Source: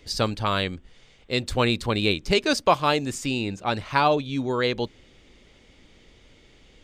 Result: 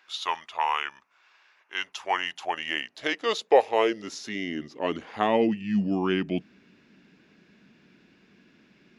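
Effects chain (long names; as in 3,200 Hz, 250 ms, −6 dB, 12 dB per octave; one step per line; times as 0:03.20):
low-shelf EQ 62 Hz +11 dB
speed change −24%
high-pass filter sweep 960 Hz → 200 Hz, 0:01.79–0:05.75
level −5 dB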